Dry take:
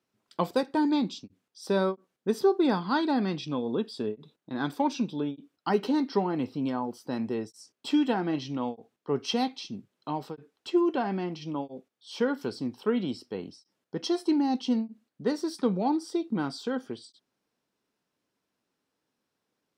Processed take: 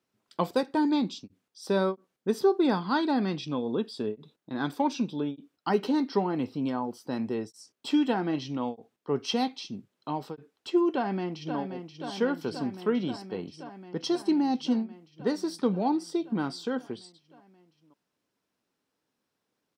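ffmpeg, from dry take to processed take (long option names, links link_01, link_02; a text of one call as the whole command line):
ffmpeg -i in.wav -filter_complex "[0:a]asplit=2[link_01][link_02];[link_02]afade=type=in:start_time=10.92:duration=0.01,afade=type=out:start_time=11.57:duration=0.01,aecho=0:1:530|1060|1590|2120|2650|3180|3710|4240|4770|5300|5830|6360:0.421697|0.337357|0.269886|0.215909|0.172727|0.138182|0.110545|0.0884362|0.0707489|0.0565991|0.0452793|0.0362235[link_03];[link_01][link_03]amix=inputs=2:normalize=0" out.wav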